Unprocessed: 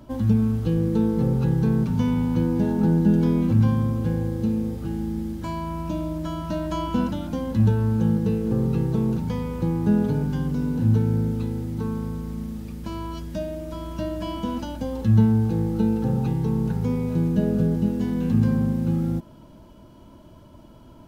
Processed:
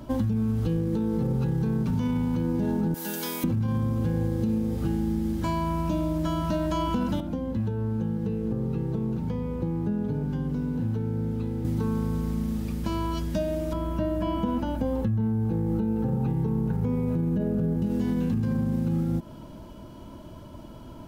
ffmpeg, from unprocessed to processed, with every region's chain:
-filter_complex "[0:a]asettb=1/sr,asplit=3[s0][s1][s2];[s0]atrim=end=2.944[s3];[s1]atrim=start=2.94:end=3.44,asetpts=PTS-STARTPTS,afade=t=in:d=0.004:c=qsin,afade=t=out:st=0.496:d=0.004:c=qsin,highpass=f=1200:p=1,aemphasis=mode=production:type=riaa[s4];[s2]atrim=start=3.436[s5];[s3][s4]acrossfade=d=0.004:c1=hsin:c2=qsin[s6];[s6][s5]acrossfade=d=0.004:c1=qsin:c2=hsin,asettb=1/sr,asplit=3[s7][s8][s9];[s7]atrim=end=7.204[s10];[s8]atrim=start=7.2:end=11.65,asetpts=PTS-STARTPTS,afade=t=in:d=0.004:c=qsin,afade=t=out:st=4.446:d=0.004:c=qsin,acrossover=split=210|630[s11][s12][s13];[s11]acompressor=threshold=0.0501:ratio=4[s14];[s12]acompressor=threshold=0.0158:ratio=4[s15];[s13]acompressor=threshold=0.002:ratio=4[s16];[s14][s15][s16]amix=inputs=3:normalize=0,bass=f=250:g=-6,treble=f=4000:g=-6[s17];[s9]atrim=start=11.646[s18];[s10][s17]acrossfade=d=0.004:c1=hsin:c2=qsin[s19];[s19][s18]acrossfade=d=0.004:c1=qsin:c2=hsin,asettb=1/sr,asplit=3[s20][s21][s22];[s20]atrim=end=13.734[s23];[s21]atrim=start=13.73:end=17.82,asetpts=PTS-STARTPTS,afade=t=in:d=0.004:c=qsin,afade=t=out:st=4.086:d=0.004:c=qsin,acrossover=split=3700[s24][s25];[s25]acompressor=threshold=0.00158:ratio=4:attack=1:release=60[s26];[s24][s26]amix=inputs=2:normalize=0,equalizer=f=4600:w=0.57:g=-7.5[s27];[s22]atrim=start=17.816[s28];[s23][s27]acrossfade=d=0.004:c1=hsin:c2=qsin[s29];[s29][s28]acrossfade=d=0.004:c1=qsin:c2=hsin,alimiter=limit=0.126:level=0:latency=1:release=42,acompressor=threshold=0.0447:ratio=6,volume=1.68"

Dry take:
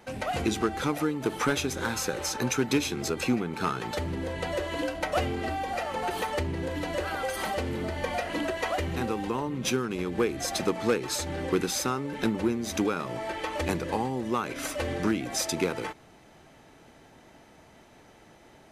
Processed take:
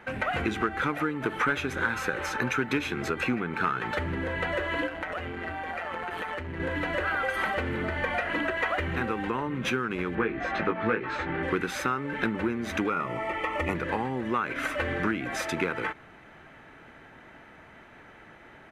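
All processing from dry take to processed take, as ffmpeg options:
-filter_complex "[0:a]asettb=1/sr,asplit=3[s0][s1][s2];[s0]atrim=end=4.874[s3];[s1]atrim=start=4.87:end=6.6,asetpts=PTS-STARTPTS,afade=t=in:d=0.004:c=qsin,afade=t=out:st=1.726:d=0.004:c=qsin,highpass=41,acompressor=threshold=0.0282:ratio=10:attack=3.2:release=140:knee=1:detection=peak,tremolo=f=170:d=0.571[s4];[s2]atrim=start=6.596[s5];[s3][s4]acrossfade=d=0.004:c1=hsin:c2=qsin[s6];[s6][s5]acrossfade=d=0.004:c1=qsin:c2=hsin,asettb=1/sr,asplit=3[s7][s8][s9];[s7]atrim=end=10.154[s10];[s8]atrim=start=10.15:end=11.43,asetpts=PTS-STARTPTS,afade=t=in:d=0.004:c=qsin,afade=t=out:st=1.276:d=0.004:c=qsin,lowpass=2700,asplit=2[s11][s12];[s12]adelay=18,volume=0.631[s13];[s11][s13]amix=inputs=2:normalize=0,atrim=end_sample=56448[s14];[s9]atrim=start=11.426[s15];[s10][s14]acrossfade=d=0.004:c1=hsin:c2=qsin[s16];[s16][s15]acrossfade=d=0.004:c1=qsin:c2=hsin,asettb=1/sr,asplit=3[s17][s18][s19];[s17]atrim=end=12.904[s20];[s18]atrim=start=12.9:end=13.75,asetpts=PTS-STARTPTS,afade=t=in:d=0.004:c=qsin,afade=t=out:st=0.846:d=0.004:c=qsin,asuperstop=centerf=1600:order=20:qfactor=5.2,equalizer=f=4000:t=o:w=0.43:g=-9[s21];[s19]atrim=start=13.746[s22];[s20][s21]acrossfade=d=0.004:c1=hsin:c2=qsin[s23];[s23][s22]acrossfade=d=0.004:c1=qsin:c2=hsin,firequalizer=gain_entry='entry(780,0);entry(1500,10);entry(4900,-11)':delay=0.05:min_phase=1,acompressor=threshold=0.0398:ratio=2,volume=1.19"

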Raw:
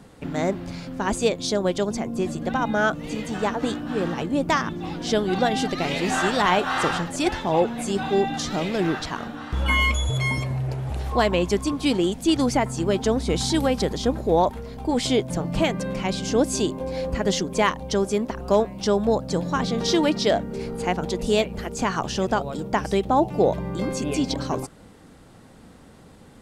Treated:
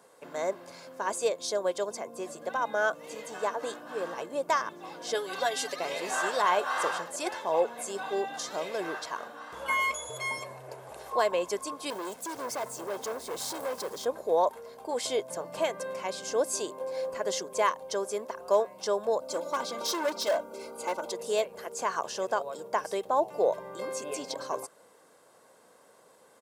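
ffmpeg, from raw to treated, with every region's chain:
-filter_complex "[0:a]asettb=1/sr,asplit=3[s0][s1][s2];[s0]atrim=end=5.144[s3];[s1]atrim=start=5.14:end=5.76,asetpts=PTS-STARTPTS,afade=t=in:d=0.004:c=qsin,afade=t=out:st=0.616:d=0.004:c=qsin,tiltshelf=f=1400:g=-4.5,aecho=1:1:7.1:0.69,atrim=end_sample=27342[s4];[s2]atrim=start=5.756[s5];[s3][s4]acrossfade=d=0.004:c1=hsin:c2=qsin[s6];[s6][s5]acrossfade=d=0.004:c1=qsin:c2=hsin,asettb=1/sr,asplit=3[s7][s8][s9];[s7]atrim=end=11.904[s10];[s8]atrim=start=11.9:end=14.05,asetpts=PTS-STARTPTS,afade=t=in:d=0.004:c=qsin,afade=t=out:st=2.146:d=0.004:c=qsin,lowshelf=f=420:g=3.5,acrusher=bits=6:mix=0:aa=0.5,asoftclip=type=hard:threshold=0.0668[s11];[s9]atrim=start=14.046[s12];[s10][s11]acrossfade=d=0.004:c1=hsin:c2=qsin[s13];[s13][s12]acrossfade=d=0.004:c1=qsin:c2=hsin,asettb=1/sr,asplit=3[s14][s15][s16];[s14]atrim=end=19.214[s17];[s15]atrim=start=19.21:end=21.12,asetpts=PTS-STARTPTS,afade=t=in:d=0.004:c=qsin,afade=t=out:st=1.906:d=0.004:c=qsin,asuperstop=centerf=1800:order=20:qfactor=4.7,aecho=1:1:3.4:0.87,atrim=end_sample=84231,volume=8.41,asoftclip=hard,volume=0.119[s18];[s16]atrim=start=21.116[s19];[s17][s18]acrossfade=d=0.004:c1=hsin:c2=qsin[s20];[s20][s19]acrossfade=d=0.004:c1=qsin:c2=hsin,highpass=660,equalizer=f=2900:w=0.55:g=-11,aecho=1:1:1.9:0.41"

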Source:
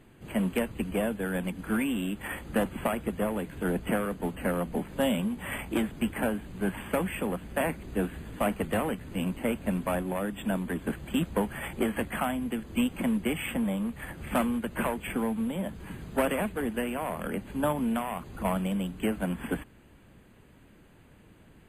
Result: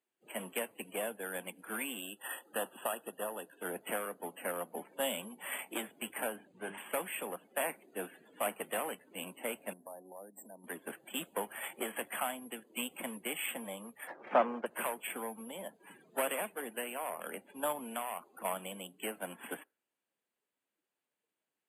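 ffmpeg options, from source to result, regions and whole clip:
-filter_complex "[0:a]asettb=1/sr,asplit=3[s0][s1][s2];[s0]atrim=end=2.004[s3];[s1]atrim=start=2:end=3.61,asetpts=PTS-STARTPTS,afade=t=in:d=0.004:c=qsin,afade=t=out:st=1.606:d=0.004:c=qsin,asuperstop=centerf=2200:order=8:qfactor=3.6,lowshelf=f=340:g=-3.5[s4];[s2]atrim=start=3.606[s5];[s3][s4]acrossfade=d=0.004:c1=hsin:c2=qsin[s6];[s6][s5]acrossfade=d=0.004:c1=qsin:c2=hsin,asettb=1/sr,asplit=3[s7][s8][s9];[s7]atrim=end=6.364[s10];[s8]atrim=start=6.36:end=6.78,asetpts=PTS-STARTPTS,afade=t=in:d=0.004:c=qsin,afade=t=out:st=0.416:d=0.004:c=qsin,lowpass=8800,lowshelf=f=110:g=9.5,bandreject=f=50:t=h:w=6,bandreject=f=100:t=h:w=6,bandreject=f=150:t=h:w=6,bandreject=f=200:t=h:w=6,bandreject=f=250:t=h:w=6,bandreject=f=300:t=h:w=6,bandreject=f=350:t=h:w=6,bandreject=f=400:t=h:w=6,bandreject=f=450:t=h:w=6[s11];[s9]atrim=start=6.776[s12];[s10][s11]acrossfade=d=0.004:c1=hsin:c2=qsin[s13];[s13][s12]acrossfade=d=0.004:c1=qsin:c2=hsin,asettb=1/sr,asplit=3[s14][s15][s16];[s14]atrim=end=9.734[s17];[s15]atrim=start=9.73:end=10.64,asetpts=PTS-STARTPTS,afade=t=in:d=0.004:c=qsin,afade=t=out:st=0.906:d=0.004:c=qsin,equalizer=f=1300:w=3.3:g=-8.5,acompressor=threshold=0.0158:ratio=6:attack=3.2:release=140:knee=1:detection=peak,asuperstop=centerf=3200:order=4:qfactor=0.6[s18];[s16]atrim=start=10.636[s19];[s17][s18]acrossfade=d=0.004:c1=hsin:c2=qsin[s20];[s20][s19]acrossfade=d=0.004:c1=qsin:c2=hsin,asettb=1/sr,asplit=3[s21][s22][s23];[s21]atrim=end=14.074[s24];[s22]atrim=start=14.07:end=14.66,asetpts=PTS-STARTPTS,afade=t=in:d=0.004:c=qsin,afade=t=out:st=0.586:d=0.004:c=qsin,lowpass=2300,equalizer=f=590:t=o:w=2.7:g=10,aeval=exprs='sgn(val(0))*max(abs(val(0))-0.00531,0)':c=same[s25];[s23]atrim=start=14.656[s26];[s24][s25]acrossfade=d=0.004:c1=hsin:c2=qsin[s27];[s27][s26]acrossfade=d=0.004:c1=qsin:c2=hsin,highpass=760,equalizer=f=1500:w=0.47:g=-9,afftdn=nr=24:nf=-56,volume=1.5"

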